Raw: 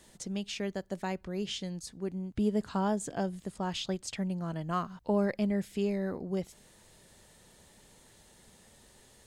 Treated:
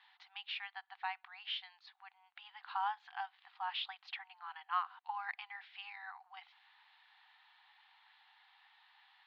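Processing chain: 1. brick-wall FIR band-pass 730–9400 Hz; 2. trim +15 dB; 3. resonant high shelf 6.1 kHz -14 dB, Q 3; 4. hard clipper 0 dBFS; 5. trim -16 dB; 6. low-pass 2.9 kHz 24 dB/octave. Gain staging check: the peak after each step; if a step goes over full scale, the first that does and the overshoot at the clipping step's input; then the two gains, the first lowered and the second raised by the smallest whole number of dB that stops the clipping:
-22.0 dBFS, -7.0 dBFS, -5.5 dBFS, -5.5 dBFS, -21.5 dBFS, -23.0 dBFS; nothing clips

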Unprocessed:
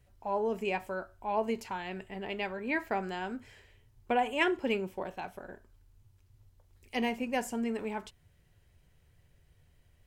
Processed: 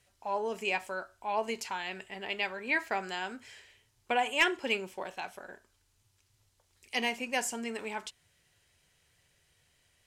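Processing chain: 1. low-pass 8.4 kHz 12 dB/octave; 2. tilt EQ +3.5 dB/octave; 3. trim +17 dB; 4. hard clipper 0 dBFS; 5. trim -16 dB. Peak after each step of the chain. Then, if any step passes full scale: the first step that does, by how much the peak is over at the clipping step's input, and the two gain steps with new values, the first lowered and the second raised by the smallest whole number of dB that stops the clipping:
-15.5 dBFS, -11.5 dBFS, +5.5 dBFS, 0.0 dBFS, -16.0 dBFS; step 3, 5.5 dB; step 3 +11 dB, step 5 -10 dB

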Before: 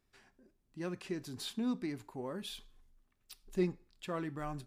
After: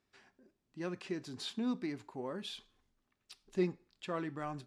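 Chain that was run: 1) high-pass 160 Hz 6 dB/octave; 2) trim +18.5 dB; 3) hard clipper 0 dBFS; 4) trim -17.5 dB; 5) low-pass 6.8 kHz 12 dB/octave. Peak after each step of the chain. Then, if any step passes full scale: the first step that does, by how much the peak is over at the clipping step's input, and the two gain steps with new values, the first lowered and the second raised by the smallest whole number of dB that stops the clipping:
-22.0 dBFS, -3.5 dBFS, -3.5 dBFS, -21.0 dBFS, -21.0 dBFS; nothing clips

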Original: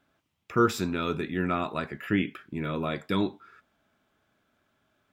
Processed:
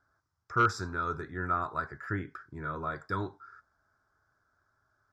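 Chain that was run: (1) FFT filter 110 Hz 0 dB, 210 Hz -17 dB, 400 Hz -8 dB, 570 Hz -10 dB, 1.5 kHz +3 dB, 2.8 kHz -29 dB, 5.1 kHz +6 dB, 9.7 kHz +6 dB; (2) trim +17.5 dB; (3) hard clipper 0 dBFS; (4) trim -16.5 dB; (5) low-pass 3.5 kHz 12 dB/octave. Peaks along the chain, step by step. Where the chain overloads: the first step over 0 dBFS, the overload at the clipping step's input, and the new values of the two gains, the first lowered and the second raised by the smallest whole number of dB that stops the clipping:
-12.0 dBFS, +5.5 dBFS, 0.0 dBFS, -16.5 dBFS, -16.0 dBFS; step 2, 5.5 dB; step 2 +11.5 dB, step 4 -10.5 dB

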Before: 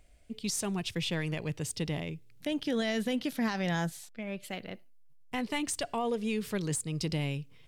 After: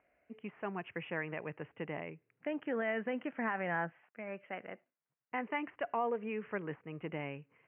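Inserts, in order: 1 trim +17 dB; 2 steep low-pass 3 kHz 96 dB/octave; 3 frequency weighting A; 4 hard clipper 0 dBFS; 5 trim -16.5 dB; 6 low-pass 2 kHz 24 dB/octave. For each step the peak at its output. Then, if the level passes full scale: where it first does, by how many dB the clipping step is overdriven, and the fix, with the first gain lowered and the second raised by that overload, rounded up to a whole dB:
-5.0 dBFS, -4.5 dBFS, -4.0 dBFS, -4.0 dBFS, -20.5 dBFS, -22.0 dBFS; nothing clips

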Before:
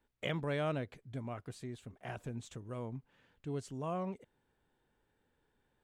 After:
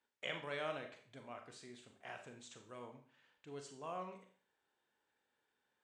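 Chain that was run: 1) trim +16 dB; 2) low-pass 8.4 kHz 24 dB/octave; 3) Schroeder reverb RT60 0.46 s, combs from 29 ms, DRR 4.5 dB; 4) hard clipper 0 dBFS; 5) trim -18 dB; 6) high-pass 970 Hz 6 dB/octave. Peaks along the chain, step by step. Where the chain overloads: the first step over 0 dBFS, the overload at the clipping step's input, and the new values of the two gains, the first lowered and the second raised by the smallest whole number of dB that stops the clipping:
-5.5 dBFS, -5.5 dBFS, -5.5 dBFS, -5.5 dBFS, -23.5 dBFS, -25.5 dBFS; nothing clips

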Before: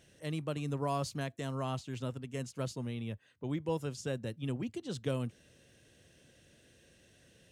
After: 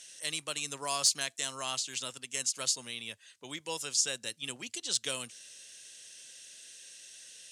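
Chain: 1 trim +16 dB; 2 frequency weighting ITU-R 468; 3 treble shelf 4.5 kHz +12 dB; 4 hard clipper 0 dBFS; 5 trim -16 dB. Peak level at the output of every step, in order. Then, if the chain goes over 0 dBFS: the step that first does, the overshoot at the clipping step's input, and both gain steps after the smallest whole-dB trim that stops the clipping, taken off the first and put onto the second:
-4.0 dBFS, -3.5 dBFS, +4.0 dBFS, 0.0 dBFS, -16.0 dBFS; step 3, 4.0 dB; step 1 +12 dB, step 5 -12 dB

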